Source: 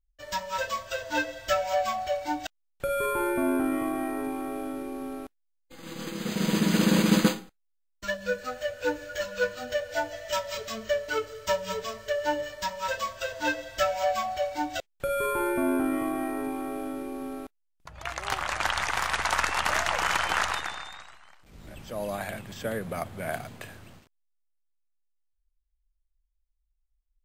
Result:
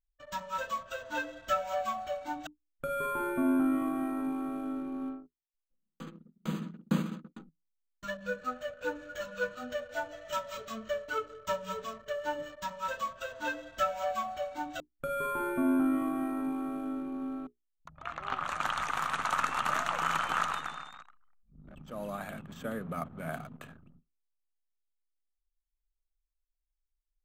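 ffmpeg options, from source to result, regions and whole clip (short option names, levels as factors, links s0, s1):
-filter_complex "[0:a]asettb=1/sr,asplit=3[s0][s1][s2];[s0]atrim=end=5.094[s3];[s1]atrim=start=5.09:end=7.4,asetpts=PTS-STARTPTS,afade=t=in:d=0.004:c=qsin,afade=t=out:st=2.306:d=0.004:c=qsin,bass=f=250:g=-1,treble=f=4000:g=-3,aeval=exprs='val(0)*pow(10,-33*if(lt(mod(2.2*n/s,1),2*abs(2.2)/1000),1-mod(2.2*n/s,1)/(2*abs(2.2)/1000),(mod(2.2*n/s,1)-2*abs(2.2)/1000)/(1-2*abs(2.2)/1000))/20)':c=same[s4];[s2]atrim=start=7.396[s5];[s3][s4]acrossfade=d=0.004:c1=hsin:c2=qsin[s6];[s6][s5]acrossfade=d=0.004:c1=qsin:c2=hsin,asettb=1/sr,asplit=3[s7][s8][s9];[s7]atrim=end=17.974[s10];[s8]atrim=start=17.97:end=18.44,asetpts=PTS-STARTPTS,afade=t=in:d=0.004:c=qsin,afade=t=out:st=0.466:d=0.004:c=qsin,acrossover=split=4700[s11][s12];[s12]acompressor=threshold=0.002:ratio=4:attack=1:release=60[s13];[s11][s13]amix=inputs=2:normalize=0,highshelf=f=7600:g=-6.5[s14];[s9]atrim=start=18.436[s15];[s10][s14]acrossfade=d=0.004:c1=hsin:c2=qsin[s16];[s16][s15]acrossfade=d=0.004:c1=qsin:c2=hsin,bandreject=f=60:t=h:w=6,bandreject=f=120:t=h:w=6,bandreject=f=180:t=h:w=6,bandreject=f=240:t=h:w=6,bandreject=f=300:t=h:w=6,bandreject=f=360:t=h:w=6,bandreject=f=420:t=h:w=6,anlmdn=0.0398,equalizer=f=100:t=o:w=0.33:g=-5,equalizer=f=160:t=o:w=0.33:g=11,equalizer=f=250:t=o:w=0.33:g=10,equalizer=f=1250:t=o:w=0.33:g=10,equalizer=f=2000:t=o:w=0.33:g=-4,equalizer=f=5000:t=o:w=0.33:g=-9,equalizer=f=10000:t=o:w=0.33:g=-4,volume=0.422"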